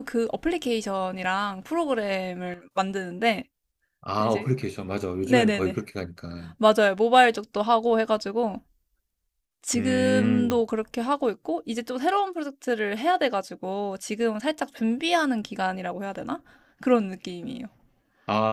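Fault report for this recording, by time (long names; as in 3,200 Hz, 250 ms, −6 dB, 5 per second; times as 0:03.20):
0:10.50: click −11 dBFS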